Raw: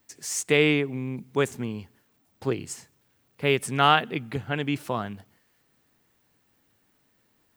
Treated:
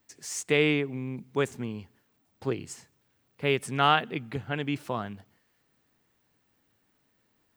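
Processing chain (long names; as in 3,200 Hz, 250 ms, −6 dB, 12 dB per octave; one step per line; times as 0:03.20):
parametric band 13,000 Hz −5 dB 1.2 octaves
level −3 dB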